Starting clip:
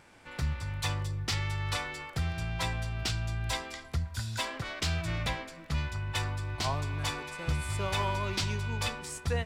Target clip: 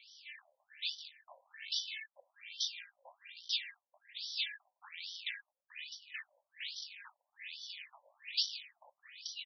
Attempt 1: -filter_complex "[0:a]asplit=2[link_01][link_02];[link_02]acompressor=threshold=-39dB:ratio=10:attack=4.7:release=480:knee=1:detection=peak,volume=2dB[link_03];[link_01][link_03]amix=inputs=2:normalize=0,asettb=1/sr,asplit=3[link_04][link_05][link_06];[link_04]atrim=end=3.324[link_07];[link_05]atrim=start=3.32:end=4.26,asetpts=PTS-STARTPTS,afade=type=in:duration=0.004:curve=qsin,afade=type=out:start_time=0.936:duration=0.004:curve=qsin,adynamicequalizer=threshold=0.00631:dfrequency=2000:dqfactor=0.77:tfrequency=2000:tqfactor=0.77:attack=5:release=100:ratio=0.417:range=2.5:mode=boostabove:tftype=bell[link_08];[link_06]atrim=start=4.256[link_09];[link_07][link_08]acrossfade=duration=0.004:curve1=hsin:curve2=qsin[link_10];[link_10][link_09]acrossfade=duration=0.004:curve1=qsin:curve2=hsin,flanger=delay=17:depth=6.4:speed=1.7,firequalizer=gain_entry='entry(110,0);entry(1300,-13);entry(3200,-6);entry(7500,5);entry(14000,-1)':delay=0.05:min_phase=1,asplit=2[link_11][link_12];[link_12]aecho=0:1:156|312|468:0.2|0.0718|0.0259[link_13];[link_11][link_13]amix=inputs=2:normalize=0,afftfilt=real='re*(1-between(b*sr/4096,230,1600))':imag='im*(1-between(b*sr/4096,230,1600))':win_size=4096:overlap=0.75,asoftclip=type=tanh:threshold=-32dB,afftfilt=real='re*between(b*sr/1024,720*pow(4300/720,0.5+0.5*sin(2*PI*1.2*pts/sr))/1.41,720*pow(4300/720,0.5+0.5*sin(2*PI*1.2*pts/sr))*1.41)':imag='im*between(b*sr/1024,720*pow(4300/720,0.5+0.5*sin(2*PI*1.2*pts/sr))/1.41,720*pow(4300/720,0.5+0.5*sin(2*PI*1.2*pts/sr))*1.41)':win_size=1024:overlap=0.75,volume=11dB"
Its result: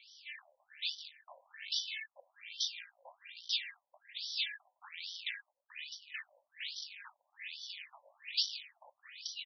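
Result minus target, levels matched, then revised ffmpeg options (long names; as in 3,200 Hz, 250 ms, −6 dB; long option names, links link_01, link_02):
downward compressor: peak gain reduction −9 dB
-filter_complex "[0:a]asplit=2[link_01][link_02];[link_02]acompressor=threshold=-49dB:ratio=10:attack=4.7:release=480:knee=1:detection=peak,volume=2dB[link_03];[link_01][link_03]amix=inputs=2:normalize=0,asettb=1/sr,asplit=3[link_04][link_05][link_06];[link_04]atrim=end=3.324[link_07];[link_05]atrim=start=3.32:end=4.26,asetpts=PTS-STARTPTS,afade=type=in:duration=0.004:curve=qsin,afade=type=out:start_time=0.936:duration=0.004:curve=qsin,adynamicequalizer=threshold=0.00631:dfrequency=2000:dqfactor=0.77:tfrequency=2000:tqfactor=0.77:attack=5:release=100:ratio=0.417:range=2.5:mode=boostabove:tftype=bell[link_08];[link_06]atrim=start=4.256[link_09];[link_07][link_08]acrossfade=duration=0.004:curve1=hsin:curve2=qsin[link_10];[link_10][link_09]acrossfade=duration=0.004:curve1=qsin:curve2=hsin,flanger=delay=17:depth=6.4:speed=1.7,firequalizer=gain_entry='entry(110,0);entry(1300,-13);entry(3200,-6);entry(7500,5);entry(14000,-1)':delay=0.05:min_phase=1,asplit=2[link_11][link_12];[link_12]aecho=0:1:156|312|468:0.2|0.0718|0.0259[link_13];[link_11][link_13]amix=inputs=2:normalize=0,afftfilt=real='re*(1-between(b*sr/4096,230,1600))':imag='im*(1-between(b*sr/4096,230,1600))':win_size=4096:overlap=0.75,asoftclip=type=tanh:threshold=-32dB,afftfilt=real='re*between(b*sr/1024,720*pow(4300/720,0.5+0.5*sin(2*PI*1.2*pts/sr))/1.41,720*pow(4300/720,0.5+0.5*sin(2*PI*1.2*pts/sr))*1.41)':imag='im*between(b*sr/1024,720*pow(4300/720,0.5+0.5*sin(2*PI*1.2*pts/sr))/1.41,720*pow(4300/720,0.5+0.5*sin(2*PI*1.2*pts/sr))*1.41)':win_size=1024:overlap=0.75,volume=11dB"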